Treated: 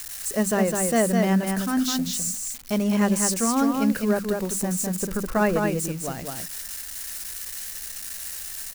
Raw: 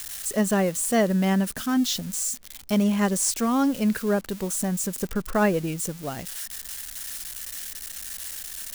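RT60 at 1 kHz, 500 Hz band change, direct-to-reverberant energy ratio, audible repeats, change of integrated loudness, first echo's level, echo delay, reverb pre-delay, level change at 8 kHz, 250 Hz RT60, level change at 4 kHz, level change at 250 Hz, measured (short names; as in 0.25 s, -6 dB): none, +1.5 dB, none, 1, +1.0 dB, -4.0 dB, 0.206 s, none, +1.5 dB, none, 0.0 dB, +0.5 dB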